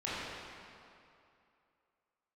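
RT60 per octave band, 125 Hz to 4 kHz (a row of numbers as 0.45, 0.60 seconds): 2.3, 2.5, 2.6, 2.7, 2.3, 1.9 seconds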